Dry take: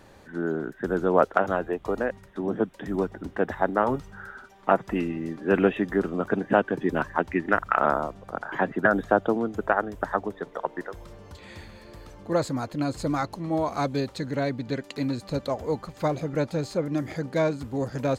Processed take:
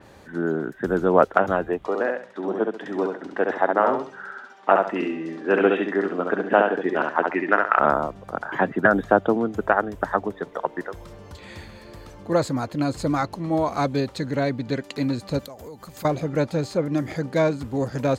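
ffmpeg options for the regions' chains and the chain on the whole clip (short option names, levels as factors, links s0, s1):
-filter_complex "[0:a]asettb=1/sr,asplit=3[s0][s1][s2];[s0]atrim=end=1.854[s3];[s1]atrim=start=1.85:end=7.79,asetpts=PTS-STARTPTS,afade=t=in:d=0.004:c=qsin,afade=t=out:st=5.936:d=0.004:c=qsin,highpass=330,lowpass=5800,aecho=1:1:68|136|204|272:0.631|0.17|0.046|0.0124,atrim=end_sample=261954[s4];[s2]atrim=start=7.786[s5];[s3][s4]acrossfade=d=0.004:c1=hsin:c2=qsin[s6];[s6][s5]acrossfade=d=0.004:c1=qsin:c2=hsin,asettb=1/sr,asplit=3[s7][s8][s9];[s7]atrim=end=15.394[s10];[s8]atrim=start=15.39:end=16.05,asetpts=PTS-STARTPTS,afade=t=in:d=0.004:c=qsin,afade=t=out:st=0.656:d=0.004:c=qsin,aemphasis=mode=production:type=50fm,acompressor=threshold=0.0112:ratio=12:attack=3.2:release=140:knee=1:detection=peak[s11];[s9]atrim=start=16.046[s12];[s10][s11]acrossfade=d=0.004:c1=hsin:c2=qsin[s13];[s13][s12]acrossfade=d=0.004:c1=qsin:c2=hsin,highpass=41,adynamicequalizer=threshold=0.00708:dfrequency=4100:dqfactor=0.7:tfrequency=4100:tqfactor=0.7:attack=5:release=100:ratio=0.375:range=2:mode=cutabove:tftype=highshelf,volume=1.5"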